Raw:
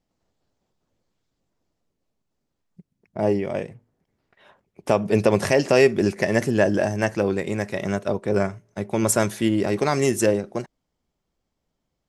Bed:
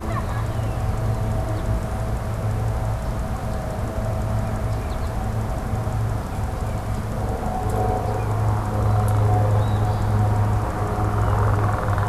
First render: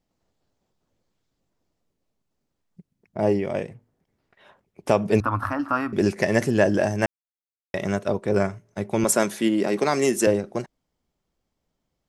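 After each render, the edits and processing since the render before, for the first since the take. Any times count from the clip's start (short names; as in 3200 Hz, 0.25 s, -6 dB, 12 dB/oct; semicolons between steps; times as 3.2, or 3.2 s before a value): 5.2–5.93 EQ curve 110 Hz 0 dB, 160 Hz -28 dB, 280 Hz +2 dB, 410 Hz -27 dB, 1300 Hz +13 dB, 2000 Hz -15 dB, 4100 Hz -17 dB, 7100 Hz -29 dB, 13000 Hz -8 dB; 7.06–7.74 mute; 9.04–10.27 HPF 170 Hz 24 dB/oct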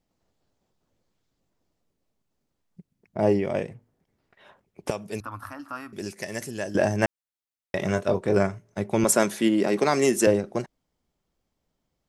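4.9–6.75 pre-emphasis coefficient 0.8; 7.77–8.37 doubler 22 ms -8 dB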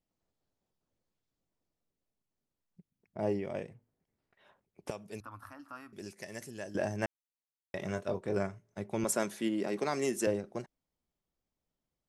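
gain -11 dB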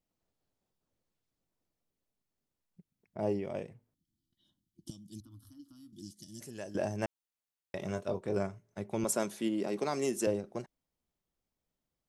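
dynamic EQ 1800 Hz, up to -6 dB, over -53 dBFS, Q 2; 3.94–6.4 spectral gain 360–2900 Hz -27 dB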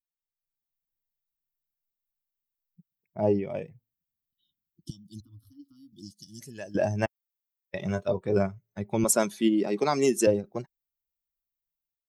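per-bin expansion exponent 1.5; AGC gain up to 10.5 dB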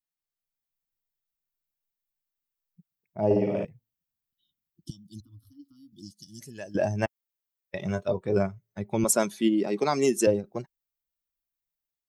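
3.25–3.65 flutter echo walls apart 9.5 m, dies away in 1.2 s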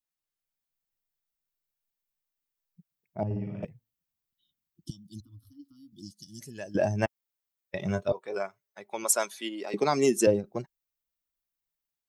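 3.23–3.63 EQ curve 140 Hz 0 dB, 530 Hz -22 dB, 1400 Hz -10 dB, 11000 Hz -21 dB; 8.12–9.74 HPF 690 Hz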